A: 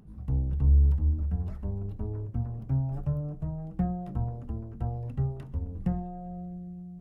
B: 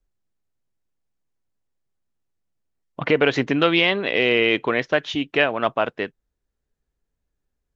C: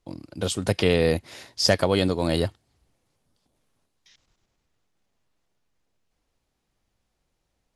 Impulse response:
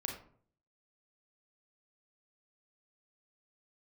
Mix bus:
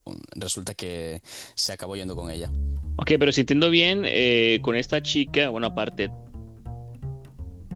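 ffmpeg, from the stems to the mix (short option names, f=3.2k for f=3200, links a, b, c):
-filter_complex "[0:a]asoftclip=type=tanh:threshold=-18dB,adelay=1850,volume=-4.5dB[a];[1:a]acrossover=split=490|3000[b][c][d];[c]acompressor=threshold=-35dB:ratio=6[e];[b][e][d]amix=inputs=3:normalize=0,volume=2dB,asplit=2[f][g];[2:a]aeval=exprs='clip(val(0),-1,0.224)':c=same,acompressor=threshold=-35dB:ratio=1.5,volume=1.5dB,asplit=3[h][i][j];[h]atrim=end=3.34,asetpts=PTS-STARTPTS,afade=t=out:st=3.336:d=0.004:c=hsin[k];[i]atrim=start=3.34:end=4.17,asetpts=PTS-STARTPTS,volume=0[l];[j]atrim=start=4.17,asetpts=PTS-STARTPTS,afade=t=in:d=0.004:c=hsin[m];[k][l][m]concat=n=3:v=0:a=1[n];[g]apad=whole_len=390509[o];[a][o]sidechaincompress=threshold=-28dB:ratio=8:attack=37:release=155[p];[p][n]amix=inputs=2:normalize=0,adynamicequalizer=threshold=0.00398:dfrequency=2800:dqfactor=0.89:tfrequency=2800:tqfactor=0.89:attack=5:release=100:ratio=0.375:range=3:mode=cutabove:tftype=bell,alimiter=limit=-22dB:level=0:latency=1:release=113,volume=0dB[q];[f][q]amix=inputs=2:normalize=0,highshelf=f=4.2k:g=11.5"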